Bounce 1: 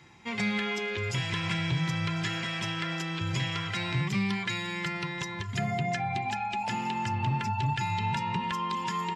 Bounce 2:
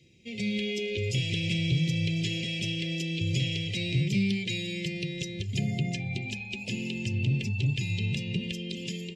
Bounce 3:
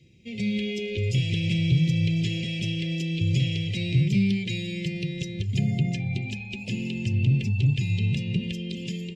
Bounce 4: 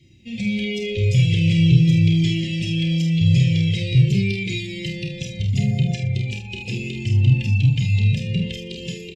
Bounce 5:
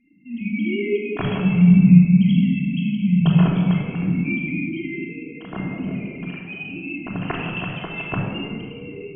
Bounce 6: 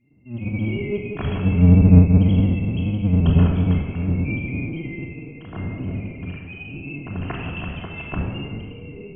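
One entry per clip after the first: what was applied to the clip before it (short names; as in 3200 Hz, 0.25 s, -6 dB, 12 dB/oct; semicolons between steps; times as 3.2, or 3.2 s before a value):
elliptic band-stop 520–2500 Hz, stop band 80 dB; high shelf 8800 Hz -4.5 dB; AGC gain up to 6 dB; gain -2.5 dB
tone controls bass +6 dB, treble -3 dB
doubler 48 ms -6 dB; on a send: early reflections 31 ms -7 dB, 73 ms -13.5 dB; on the sum: cascading flanger falling 0.42 Hz; gain +7.5 dB
sine-wave speech; shoebox room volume 2400 m³, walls mixed, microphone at 3.2 m; gain -8.5 dB
octaver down 1 oct, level +3 dB; gain -4.5 dB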